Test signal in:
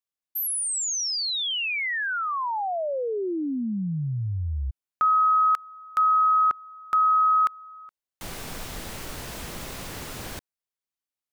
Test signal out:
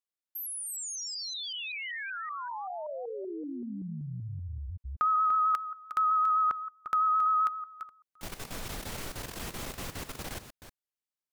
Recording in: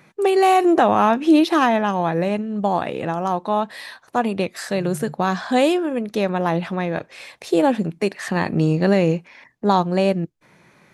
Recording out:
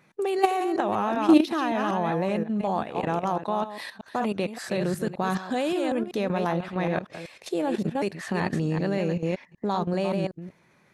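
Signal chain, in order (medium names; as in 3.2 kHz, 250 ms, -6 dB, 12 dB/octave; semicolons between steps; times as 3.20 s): chunks repeated in reverse 191 ms, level -7 dB; level held to a coarse grid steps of 12 dB; vibrato 7.7 Hz 26 cents; trim -1.5 dB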